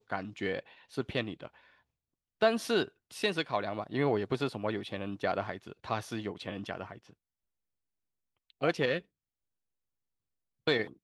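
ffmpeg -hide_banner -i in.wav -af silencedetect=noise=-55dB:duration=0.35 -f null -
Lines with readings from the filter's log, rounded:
silence_start: 1.79
silence_end: 2.41 | silence_duration: 0.62
silence_start: 7.13
silence_end: 8.50 | silence_duration: 1.37
silence_start: 9.02
silence_end: 10.67 | silence_duration: 1.65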